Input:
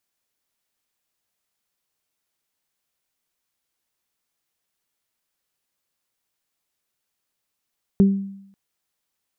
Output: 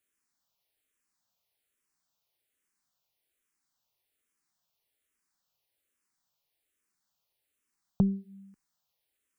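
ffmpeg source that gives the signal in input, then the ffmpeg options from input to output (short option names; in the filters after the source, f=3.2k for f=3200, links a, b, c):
-f lavfi -i "aevalsrc='0.355*pow(10,-3*t/0.75)*sin(2*PI*196*t)+0.126*pow(10,-3*t/0.32)*sin(2*PI*392*t)':d=0.54:s=44100"
-filter_complex "[0:a]acompressor=threshold=-20dB:ratio=3,asplit=2[a][b];[b]afreqshift=-1.2[c];[a][c]amix=inputs=2:normalize=1"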